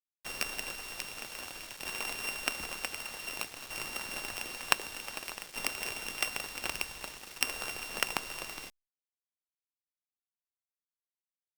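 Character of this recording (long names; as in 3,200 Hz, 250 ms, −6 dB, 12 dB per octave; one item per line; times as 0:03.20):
a buzz of ramps at a fixed pitch in blocks of 16 samples
tremolo saw down 0.54 Hz, depth 70%
a quantiser's noise floor 8 bits, dither none
Opus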